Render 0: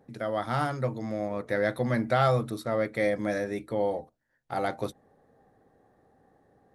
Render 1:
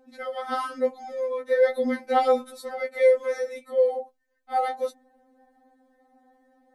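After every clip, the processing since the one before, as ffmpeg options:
ffmpeg -i in.wav -af "afftfilt=real='re*3.46*eq(mod(b,12),0)':imag='im*3.46*eq(mod(b,12),0)':win_size=2048:overlap=0.75,volume=3dB" out.wav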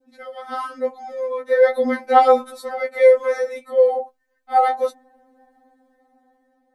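ffmpeg -i in.wav -af "dynaudnorm=framelen=490:gausssize=5:maxgain=6.5dB,adynamicequalizer=threshold=0.0316:dfrequency=1000:dqfactor=0.76:tfrequency=1000:tqfactor=0.76:attack=5:release=100:ratio=0.375:range=4:mode=boostabove:tftype=bell,volume=-3dB" out.wav

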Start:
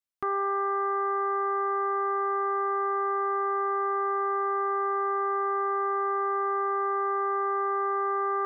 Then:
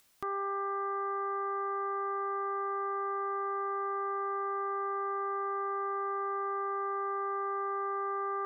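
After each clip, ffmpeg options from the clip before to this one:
ffmpeg -i in.wav -af "acompressor=mode=upward:threshold=-36dB:ratio=2.5,volume=-6.5dB" out.wav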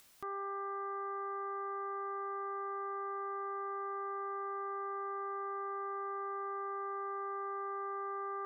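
ffmpeg -i in.wav -af "alimiter=level_in=13.5dB:limit=-24dB:level=0:latency=1,volume=-13.5dB,volume=4dB" out.wav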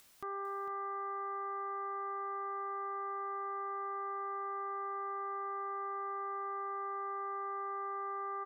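ffmpeg -i in.wav -af "aecho=1:1:451:0.316" out.wav

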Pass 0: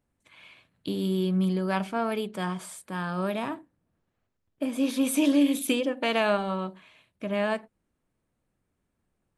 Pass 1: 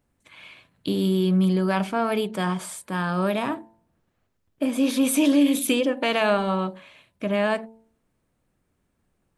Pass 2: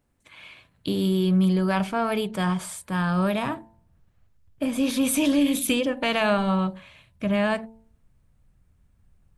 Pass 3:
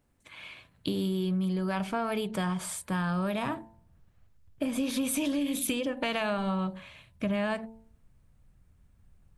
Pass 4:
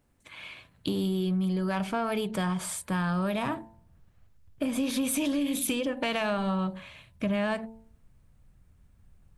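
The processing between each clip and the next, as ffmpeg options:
ffmpeg -i in.wav -filter_complex "[0:a]bandreject=frequency=111.8:width_type=h:width=4,bandreject=frequency=223.6:width_type=h:width=4,bandreject=frequency=335.4:width_type=h:width=4,bandreject=frequency=447.2:width_type=h:width=4,bandreject=frequency=559:width_type=h:width=4,bandreject=frequency=670.8:width_type=h:width=4,bandreject=frequency=782.6:width_type=h:width=4,bandreject=frequency=894.4:width_type=h:width=4,bandreject=frequency=1006.2:width_type=h:width=4,asplit=2[link_01][link_02];[link_02]alimiter=limit=-22dB:level=0:latency=1:release=25,volume=0dB[link_03];[link_01][link_03]amix=inputs=2:normalize=0" out.wav
ffmpeg -i in.wav -af "asubboost=boost=7:cutoff=120" out.wav
ffmpeg -i in.wav -af "acompressor=threshold=-27dB:ratio=6" out.wav
ffmpeg -i in.wav -af "asoftclip=type=tanh:threshold=-19.5dB,volume=2dB" out.wav

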